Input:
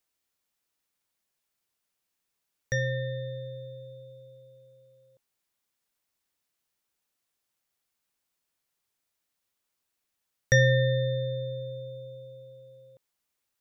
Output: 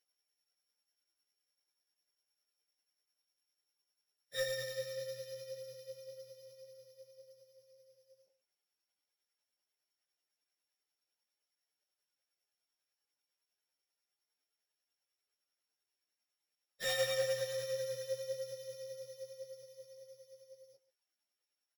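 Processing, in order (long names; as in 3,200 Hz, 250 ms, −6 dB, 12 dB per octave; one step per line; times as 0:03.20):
samples sorted by size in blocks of 8 samples
high-pass filter 370 Hz 12 dB per octave
parametric band 1,100 Hz −10.5 dB 0.25 octaves
amplitude tremolo 16 Hz, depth 54%
soft clipping −26.5 dBFS, distortion −10 dB
time stretch by phase vocoder 1.6×
single-tap delay 133 ms −16 dB
string-ensemble chorus
level +2.5 dB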